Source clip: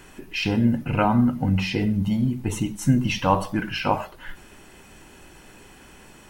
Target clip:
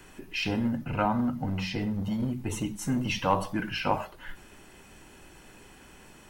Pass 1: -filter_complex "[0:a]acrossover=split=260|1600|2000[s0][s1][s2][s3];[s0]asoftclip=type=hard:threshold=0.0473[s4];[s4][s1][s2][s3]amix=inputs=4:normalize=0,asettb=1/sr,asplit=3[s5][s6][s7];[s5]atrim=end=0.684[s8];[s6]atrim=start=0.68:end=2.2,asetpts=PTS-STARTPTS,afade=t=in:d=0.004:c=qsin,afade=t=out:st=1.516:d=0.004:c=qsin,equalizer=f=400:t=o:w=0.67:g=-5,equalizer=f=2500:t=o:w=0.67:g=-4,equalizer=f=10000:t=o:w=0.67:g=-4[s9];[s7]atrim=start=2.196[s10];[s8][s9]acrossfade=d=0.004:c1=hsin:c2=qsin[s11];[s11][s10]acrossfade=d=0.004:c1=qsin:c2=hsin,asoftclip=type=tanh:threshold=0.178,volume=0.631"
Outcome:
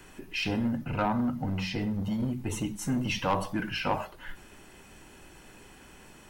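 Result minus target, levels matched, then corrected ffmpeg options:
saturation: distortion +11 dB
-filter_complex "[0:a]acrossover=split=260|1600|2000[s0][s1][s2][s3];[s0]asoftclip=type=hard:threshold=0.0473[s4];[s4][s1][s2][s3]amix=inputs=4:normalize=0,asettb=1/sr,asplit=3[s5][s6][s7];[s5]atrim=end=0.684[s8];[s6]atrim=start=0.68:end=2.2,asetpts=PTS-STARTPTS,afade=t=in:d=0.004:c=qsin,afade=t=out:st=1.516:d=0.004:c=qsin,equalizer=f=400:t=o:w=0.67:g=-5,equalizer=f=2500:t=o:w=0.67:g=-4,equalizer=f=10000:t=o:w=0.67:g=-4[s9];[s7]atrim=start=2.196[s10];[s8][s9]acrossfade=d=0.004:c1=hsin:c2=qsin[s11];[s11][s10]acrossfade=d=0.004:c1=qsin:c2=hsin,asoftclip=type=tanh:threshold=0.473,volume=0.631"

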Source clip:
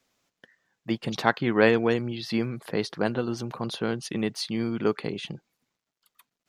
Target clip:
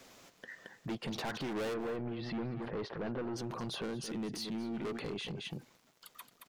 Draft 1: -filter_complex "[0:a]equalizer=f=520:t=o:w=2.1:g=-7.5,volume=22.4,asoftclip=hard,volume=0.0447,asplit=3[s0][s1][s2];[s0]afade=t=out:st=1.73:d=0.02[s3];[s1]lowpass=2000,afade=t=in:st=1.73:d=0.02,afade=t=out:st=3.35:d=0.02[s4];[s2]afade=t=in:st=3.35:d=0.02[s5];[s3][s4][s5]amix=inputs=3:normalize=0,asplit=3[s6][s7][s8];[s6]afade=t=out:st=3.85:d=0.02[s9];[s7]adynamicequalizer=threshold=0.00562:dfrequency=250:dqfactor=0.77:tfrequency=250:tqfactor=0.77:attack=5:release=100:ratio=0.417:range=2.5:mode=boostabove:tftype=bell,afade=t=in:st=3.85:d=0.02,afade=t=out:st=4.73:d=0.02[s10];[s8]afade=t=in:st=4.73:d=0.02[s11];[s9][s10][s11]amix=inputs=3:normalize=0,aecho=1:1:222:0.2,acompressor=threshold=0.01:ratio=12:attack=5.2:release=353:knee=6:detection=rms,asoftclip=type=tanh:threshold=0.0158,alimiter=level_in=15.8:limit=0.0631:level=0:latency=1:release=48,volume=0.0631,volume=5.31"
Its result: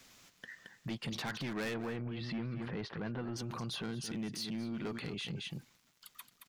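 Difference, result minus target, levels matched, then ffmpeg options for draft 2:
saturation: distortion +19 dB; 500 Hz band -4.0 dB
-filter_complex "[0:a]equalizer=f=520:t=o:w=2.1:g=3.5,volume=22.4,asoftclip=hard,volume=0.0447,asplit=3[s0][s1][s2];[s0]afade=t=out:st=1.73:d=0.02[s3];[s1]lowpass=2000,afade=t=in:st=1.73:d=0.02,afade=t=out:st=3.35:d=0.02[s4];[s2]afade=t=in:st=3.35:d=0.02[s5];[s3][s4][s5]amix=inputs=3:normalize=0,asplit=3[s6][s7][s8];[s6]afade=t=out:st=3.85:d=0.02[s9];[s7]adynamicequalizer=threshold=0.00562:dfrequency=250:dqfactor=0.77:tfrequency=250:tqfactor=0.77:attack=5:release=100:ratio=0.417:range=2.5:mode=boostabove:tftype=bell,afade=t=in:st=3.85:d=0.02,afade=t=out:st=4.73:d=0.02[s10];[s8]afade=t=in:st=4.73:d=0.02[s11];[s9][s10][s11]amix=inputs=3:normalize=0,aecho=1:1:222:0.2,acompressor=threshold=0.01:ratio=12:attack=5.2:release=353:knee=6:detection=rms,asoftclip=type=tanh:threshold=0.0473,alimiter=level_in=15.8:limit=0.0631:level=0:latency=1:release=48,volume=0.0631,volume=5.31"

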